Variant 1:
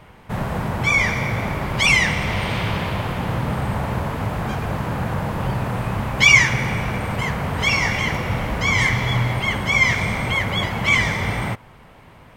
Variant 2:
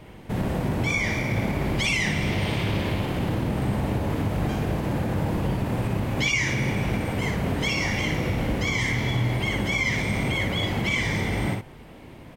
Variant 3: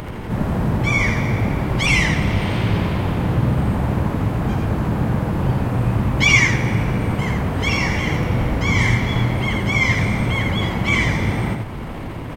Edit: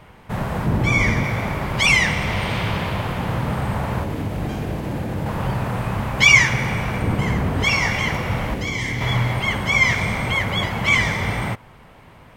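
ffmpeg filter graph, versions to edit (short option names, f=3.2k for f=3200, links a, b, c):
-filter_complex "[2:a]asplit=2[a][b];[1:a]asplit=2[c][d];[0:a]asplit=5[e][f][g][h][i];[e]atrim=end=0.662[j];[a]atrim=start=0.658:end=1.242[k];[f]atrim=start=1.238:end=4.042[l];[c]atrim=start=4.038:end=5.262[m];[g]atrim=start=5.258:end=7.022[n];[b]atrim=start=7.018:end=7.642[o];[h]atrim=start=7.638:end=8.542[p];[d]atrim=start=8.538:end=9.012[q];[i]atrim=start=9.008[r];[j][k]acrossfade=d=0.004:c1=hsin:c2=hsin[s];[s][l]acrossfade=d=0.004:c1=hsin:c2=hsin[t];[t][m]acrossfade=d=0.004:c1=hsin:c2=hsin[u];[u][n]acrossfade=d=0.004:c1=hsin:c2=hsin[v];[v][o]acrossfade=d=0.004:c1=hsin:c2=hsin[w];[w][p]acrossfade=d=0.004:c1=hsin:c2=hsin[x];[x][q]acrossfade=d=0.004:c1=hsin:c2=hsin[y];[y][r]acrossfade=d=0.004:c1=hsin:c2=hsin"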